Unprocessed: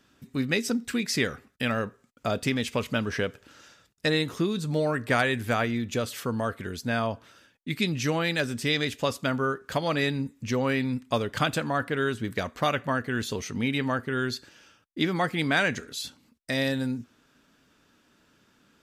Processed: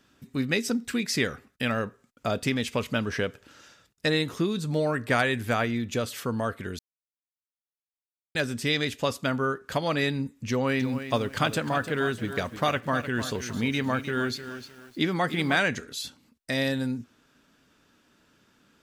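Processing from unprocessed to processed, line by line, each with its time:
6.79–8.35 s: mute
10.49–15.57 s: bit-crushed delay 305 ms, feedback 35%, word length 8-bit, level -10.5 dB

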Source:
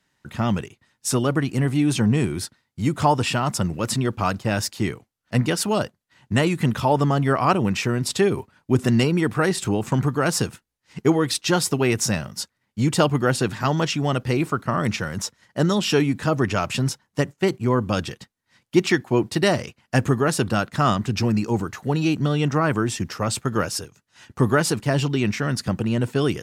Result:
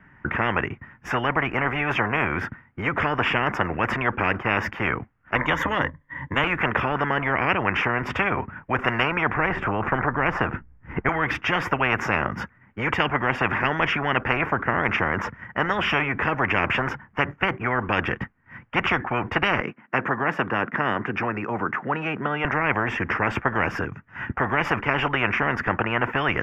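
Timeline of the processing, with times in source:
5.35–6.44 s: rippled EQ curve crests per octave 1.1, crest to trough 15 dB
9.34–11.09 s: tilt EQ -3.5 dB/octave
19.60–22.45 s: ladder high-pass 190 Hz, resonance 30%
whole clip: inverse Chebyshev low-pass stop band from 3.8 kHz, stop band 40 dB; peaking EQ 530 Hz -10 dB 1.7 oct; spectrum-flattening compressor 10:1

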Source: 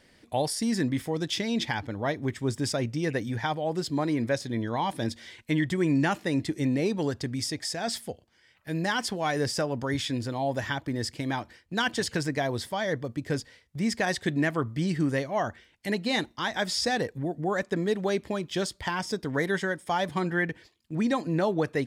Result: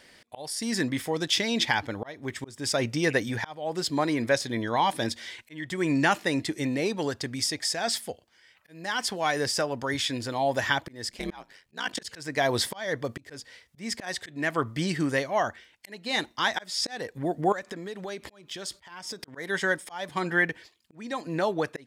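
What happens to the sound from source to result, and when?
11.09–12.03 s: ring modulator 110 Hz -> 21 Hz
17.52–19.28 s: compression 12:1, threshold -38 dBFS
whole clip: slow attack 433 ms; bass shelf 360 Hz -11 dB; gain riding within 5 dB 2 s; trim +6 dB

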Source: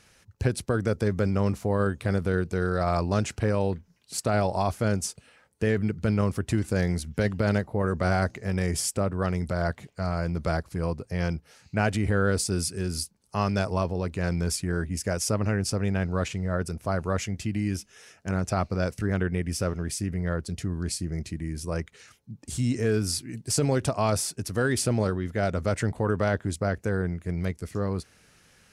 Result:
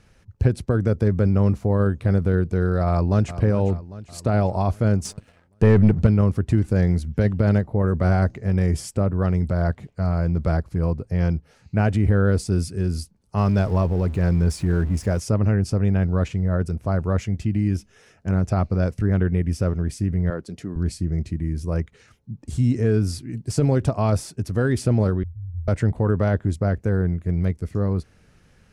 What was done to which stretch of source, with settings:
2.88–3.37 s: echo throw 400 ms, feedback 55%, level -13 dB
5.05–6.07 s: waveshaping leveller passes 2
13.37–15.20 s: jump at every zero crossing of -36.5 dBFS
20.30–20.76 s: high-pass 240 Hz
25.23–25.68 s: inverse Chebyshev band-stop 330–4800 Hz, stop band 70 dB
whole clip: tilt EQ -2.5 dB/octave

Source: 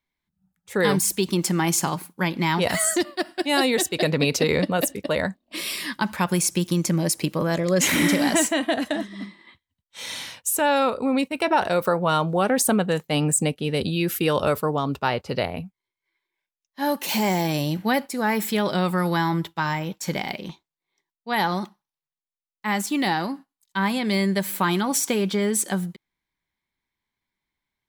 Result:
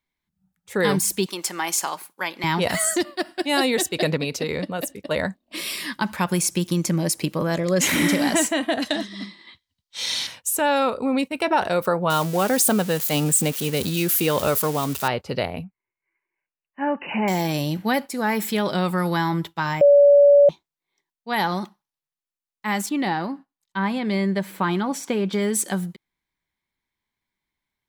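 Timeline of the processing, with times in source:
1.26–2.44 s: high-pass 570 Hz
4.17–5.11 s: gain -5.5 dB
8.82–10.27 s: peaking EQ 4.6 kHz +11.5 dB 1.2 oct
12.10–15.08 s: zero-crossing glitches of -19.5 dBFS
15.64–17.28 s: brick-wall FIR low-pass 3 kHz
19.81–20.49 s: bleep 572 Hz -9 dBFS
22.89–25.33 s: low-pass 2.1 kHz 6 dB/octave

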